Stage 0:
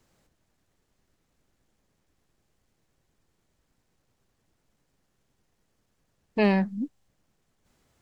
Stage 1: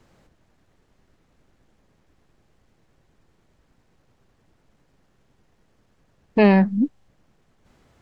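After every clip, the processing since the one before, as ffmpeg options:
-filter_complex "[0:a]lowpass=f=2.6k:p=1,asplit=2[a][b];[b]alimiter=limit=-22dB:level=0:latency=1:release=154,volume=-0.5dB[c];[a][c]amix=inputs=2:normalize=0,volume=5dB"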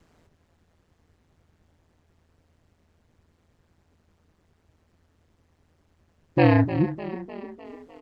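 -filter_complex "[0:a]asplit=7[a][b][c][d][e][f][g];[b]adelay=302,afreqshift=36,volume=-13dB[h];[c]adelay=604,afreqshift=72,volume=-17.7dB[i];[d]adelay=906,afreqshift=108,volume=-22.5dB[j];[e]adelay=1208,afreqshift=144,volume=-27.2dB[k];[f]adelay=1510,afreqshift=180,volume=-31.9dB[l];[g]adelay=1812,afreqshift=216,volume=-36.7dB[m];[a][h][i][j][k][l][m]amix=inputs=7:normalize=0,aeval=exprs='val(0)*sin(2*PI*82*n/s)':c=same"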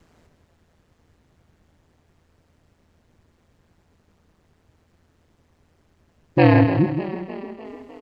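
-af "aecho=1:1:163:0.398,volume=3.5dB"

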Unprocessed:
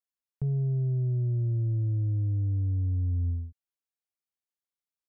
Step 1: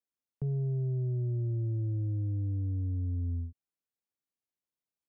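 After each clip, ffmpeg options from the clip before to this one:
-filter_complex "[0:a]equalizer=f=220:w=0.38:g=10.5,acrossover=split=330[a][b];[a]alimiter=limit=-22dB:level=0:latency=1:release=118[c];[c][b]amix=inputs=2:normalize=0,volume=-6dB"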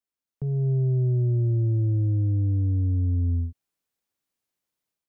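-af "dynaudnorm=f=350:g=3:m=9dB"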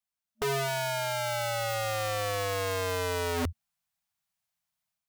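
-af "afftfilt=real='re*(1-between(b*sr/4096,220,610))':imag='im*(1-between(b*sr/4096,220,610))':win_size=4096:overlap=0.75,aeval=exprs='(mod(17.8*val(0)+1,2)-1)/17.8':c=same"

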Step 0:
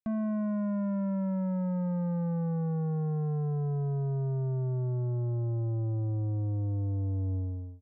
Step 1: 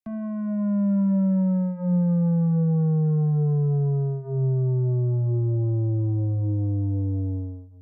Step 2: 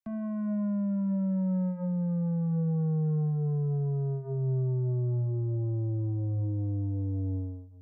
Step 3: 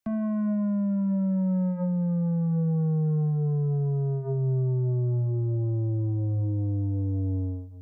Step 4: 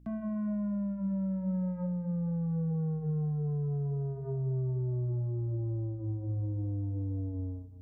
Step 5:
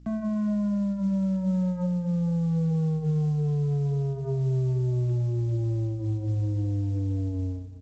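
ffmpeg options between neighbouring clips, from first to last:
-filter_complex "[0:a]bandreject=f=45.32:t=h:w=4,bandreject=f=90.64:t=h:w=4,bandreject=f=135.96:t=h:w=4,bandreject=f=181.28:t=h:w=4,bandreject=f=226.6:t=h:w=4,bandreject=f=271.92:t=h:w=4,bandreject=f=317.24:t=h:w=4,bandreject=f=362.56:t=h:w=4,bandreject=f=407.88:t=h:w=4,bandreject=f=453.2:t=h:w=4,bandreject=f=498.52:t=h:w=4,bandreject=f=543.84:t=h:w=4,bandreject=f=589.16:t=h:w=4,bandreject=f=634.48:t=h:w=4,bandreject=f=679.8:t=h:w=4,bandreject=f=725.12:t=h:w=4,bandreject=f=770.44:t=h:w=4,bandreject=f=815.76:t=h:w=4,bandreject=f=861.08:t=h:w=4,bandreject=f=906.4:t=h:w=4,bandreject=f=951.72:t=h:w=4,bandreject=f=997.04:t=h:w=4,bandreject=f=1.04236k:t=h:w=4,bandreject=f=1.08768k:t=h:w=4,bandreject=f=1.133k:t=h:w=4,bandreject=f=1.17832k:t=h:w=4,bandreject=f=1.22364k:t=h:w=4,bandreject=f=1.26896k:t=h:w=4,bandreject=f=1.31428k:t=h:w=4,bandreject=f=1.3596k:t=h:w=4,bandreject=f=1.40492k:t=h:w=4,bandreject=f=1.45024k:t=h:w=4,bandreject=f=1.49556k:t=h:w=4,bandreject=f=1.54088k:t=h:w=4,bandreject=f=1.5862k:t=h:w=4,bandreject=f=1.63152k:t=h:w=4,bandreject=f=1.67684k:t=h:w=4,bandreject=f=1.72216k:t=h:w=4,bandreject=f=1.76748k:t=h:w=4,acrossover=split=110|450|830[a][b][c][d];[b]dynaudnorm=f=180:g=7:m=11dB[e];[a][e][c][d]amix=inputs=4:normalize=0"
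-af "alimiter=limit=-21.5dB:level=0:latency=1,volume=-3.5dB"
-af "acompressor=threshold=-31dB:ratio=6,volume=7.5dB"
-af "aeval=exprs='val(0)+0.00398*(sin(2*PI*60*n/s)+sin(2*PI*2*60*n/s)/2+sin(2*PI*3*60*n/s)/3+sin(2*PI*4*60*n/s)/4+sin(2*PI*5*60*n/s)/5)':c=same,flanger=delay=5.4:depth=9.2:regen=-81:speed=0.41:shape=triangular,volume=-2.5dB"
-filter_complex "[0:a]asplit=2[a][b];[b]adelay=501.5,volume=-27dB,highshelf=f=4k:g=-11.3[c];[a][c]amix=inputs=2:normalize=0,volume=6.5dB" -ar 16000 -c:a pcm_mulaw

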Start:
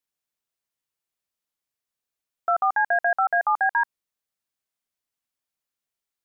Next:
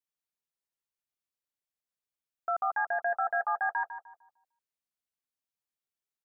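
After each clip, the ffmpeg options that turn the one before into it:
-filter_complex "[0:a]asplit=2[a][b];[b]adelay=151,lowpass=f=1k:p=1,volume=-7dB,asplit=2[c][d];[d]adelay=151,lowpass=f=1k:p=1,volume=0.42,asplit=2[e][f];[f]adelay=151,lowpass=f=1k:p=1,volume=0.42,asplit=2[g][h];[h]adelay=151,lowpass=f=1k:p=1,volume=0.42,asplit=2[i][j];[j]adelay=151,lowpass=f=1k:p=1,volume=0.42[k];[a][c][e][g][i][k]amix=inputs=6:normalize=0,volume=-8.5dB"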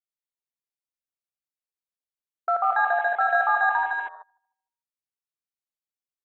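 -af "aecho=1:1:72.89|163.3|236.2:0.355|0.562|0.398,afwtdn=0.00708,volume=7dB"

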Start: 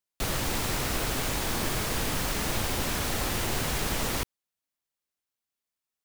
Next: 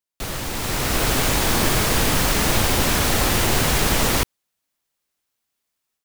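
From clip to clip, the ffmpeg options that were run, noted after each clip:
-af "dynaudnorm=f=540:g=3:m=10.5dB"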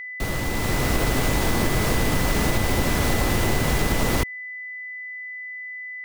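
-af "tiltshelf=f=970:g=4,acompressor=threshold=-17dB:ratio=6,aeval=exprs='val(0)+0.0251*sin(2*PI*2000*n/s)':c=same"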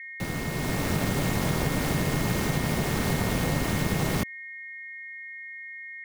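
-af "aeval=exprs='val(0)*sin(2*PI*150*n/s)':c=same,volume=-2.5dB"

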